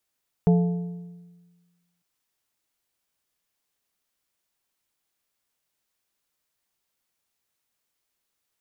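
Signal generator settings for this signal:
struck metal plate, lowest mode 174 Hz, modes 4, decay 1.43 s, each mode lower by 8 dB, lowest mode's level −13.5 dB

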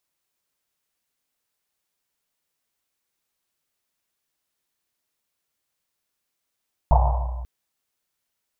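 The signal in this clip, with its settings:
drum after Risset length 0.54 s, pitch 61 Hz, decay 2.02 s, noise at 800 Hz, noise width 410 Hz, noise 30%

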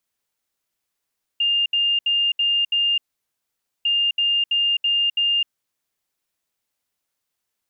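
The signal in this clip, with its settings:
beeps in groups sine 2,810 Hz, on 0.26 s, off 0.07 s, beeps 5, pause 0.87 s, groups 2, −16.5 dBFS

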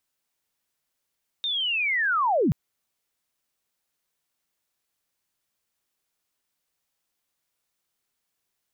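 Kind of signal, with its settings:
glide linear 3,700 Hz → 110 Hz −24.5 dBFS → −18 dBFS 1.08 s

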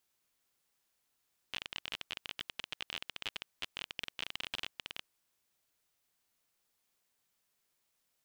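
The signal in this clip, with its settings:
Geiger counter clicks 28 per second −21.5 dBFS 3.65 s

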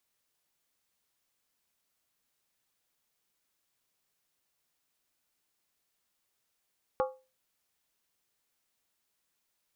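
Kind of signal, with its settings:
struck skin, lowest mode 520 Hz, decay 0.31 s, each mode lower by 4 dB, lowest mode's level −23.5 dB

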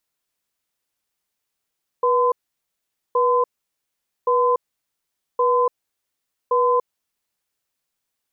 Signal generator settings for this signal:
tone pair in a cadence 488 Hz, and 1,020 Hz, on 0.29 s, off 0.83 s, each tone −17.5 dBFS 5.49 s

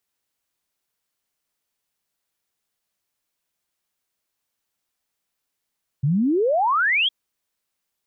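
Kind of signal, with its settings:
exponential sine sweep 130 Hz → 3,400 Hz 1.06 s −16.5 dBFS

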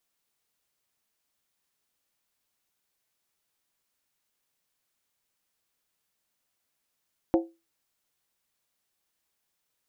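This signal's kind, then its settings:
struck skin, lowest mode 333 Hz, decay 0.26 s, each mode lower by 5.5 dB, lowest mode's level −16 dB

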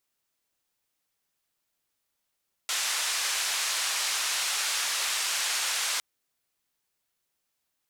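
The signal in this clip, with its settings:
band-limited noise 1,000–7,800 Hz, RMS −29 dBFS 3.31 s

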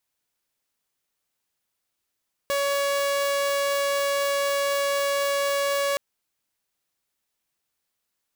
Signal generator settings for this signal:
tone saw 562 Hz −19.5 dBFS 3.47 s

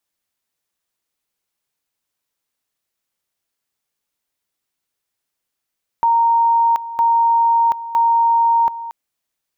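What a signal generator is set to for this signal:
tone at two levels in turn 927 Hz −11 dBFS, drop 14.5 dB, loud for 0.73 s, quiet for 0.23 s, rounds 3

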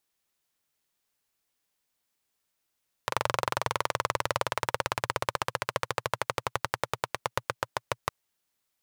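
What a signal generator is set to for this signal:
pulse-train model of a single-cylinder engine, changing speed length 5.01 s, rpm 2,800, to 700, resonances 120/550/950 Hz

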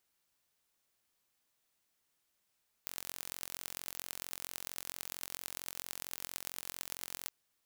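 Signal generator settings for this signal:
impulse train 44.4 per second, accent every 5, −10.5 dBFS 4.42 s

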